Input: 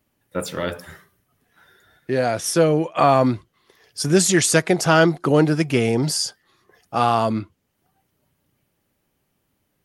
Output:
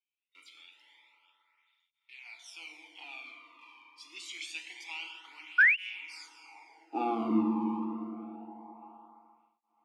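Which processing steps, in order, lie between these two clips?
band-limited delay 0.604 s, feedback 41%, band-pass 1600 Hz, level -15.5 dB; in parallel at -8.5 dB: bit-crush 5-bit; on the sum: high-pass sweep 3100 Hz -> 88 Hz, 5.89–7.61; on a send at -1 dB: reverb RT60 4.8 s, pre-delay 5 ms; 0.57–2.26 on the sum: compressor, threshold -28 dBFS, peak gain reduction 6 dB; vowel filter u; 5.58–5.78 painted sound rise 1400–3100 Hz -14 dBFS; de-hum 184.6 Hz, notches 35; tape flanging out of phase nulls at 0.26 Hz, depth 1.5 ms

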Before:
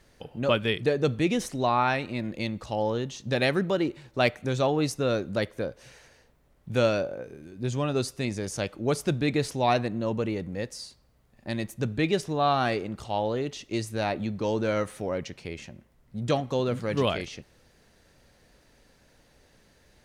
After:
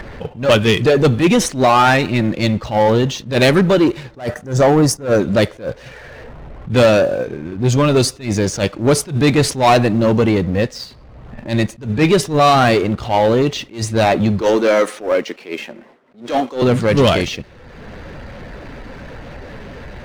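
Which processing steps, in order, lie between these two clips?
bin magnitudes rounded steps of 15 dB; low-pass opened by the level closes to 2000 Hz, open at -23 dBFS; 4.18–5.19 spectral gain 2000–4500 Hz -14 dB; 14.41–16.62 HPF 270 Hz 24 dB/oct; gate with hold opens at -60 dBFS; sample leveller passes 2; upward compressor, threshold -34 dBFS; power-law curve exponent 0.7; attack slew limiter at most 180 dB/s; gain +5 dB

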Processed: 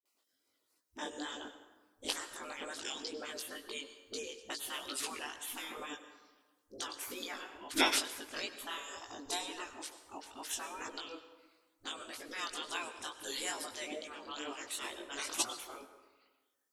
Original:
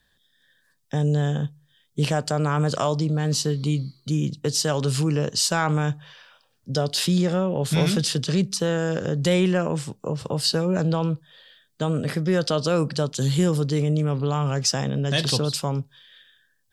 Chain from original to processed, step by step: reverb removal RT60 0.91 s; spectral gate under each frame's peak -20 dB weak; resonant low shelf 220 Hz -8 dB, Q 3; spectral gain 8.9–9.51, 1200–3600 Hz -8 dB; dispersion highs, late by 56 ms, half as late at 300 Hz; chorus 2.2 Hz, delay 17.5 ms, depth 4.3 ms; plate-style reverb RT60 1.3 s, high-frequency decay 0.6×, pre-delay 85 ms, DRR 10.5 dB; upward expander 2.5:1, over -39 dBFS; gain +9 dB

